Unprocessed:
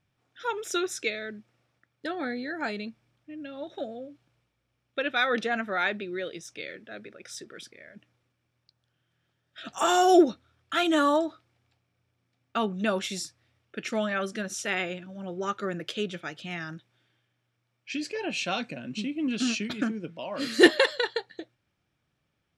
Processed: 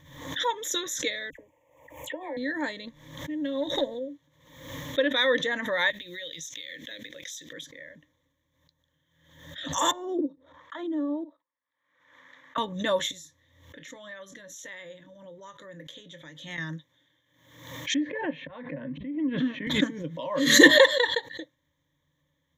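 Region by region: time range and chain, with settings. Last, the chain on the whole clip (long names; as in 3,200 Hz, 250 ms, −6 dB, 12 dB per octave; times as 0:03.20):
0:01.30–0:02.37: drawn EQ curve 100 Hz 0 dB, 210 Hz −19 dB, 310 Hz −1 dB, 460 Hz +6 dB, 940 Hz +11 dB, 1,400 Hz −17 dB, 2,600 Hz +10 dB, 4,000 Hz −25 dB, 7,400 Hz +3 dB + downward compressor 3 to 1, threshold −37 dBFS + all-pass dispersion lows, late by 89 ms, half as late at 2,100 Hz
0:02.87–0:03.99: leveller curve on the samples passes 1 + highs frequency-modulated by the lows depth 0.1 ms
0:05.90–0:07.53: high shelf with overshoot 1,800 Hz +12.5 dB, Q 1.5 + downward compressor 8 to 1, threshold −38 dBFS + floating-point word with a short mantissa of 4 bits
0:09.91–0:12.58: high-pass filter 120 Hz + output level in coarse steps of 14 dB + envelope filter 320–1,500 Hz, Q 2.3, down, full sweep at −24.5 dBFS
0:13.11–0:16.58: downward compressor 2.5 to 1, threshold −49 dBFS + double-tracking delay 25 ms −12 dB
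0:17.94–0:19.67: low-pass filter 2,100 Hz 24 dB per octave + volume swells 488 ms + multiband upward and downward compressor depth 40%
whole clip: EQ curve with evenly spaced ripples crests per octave 1.1, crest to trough 18 dB; background raised ahead of every attack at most 70 dB per second; level −2 dB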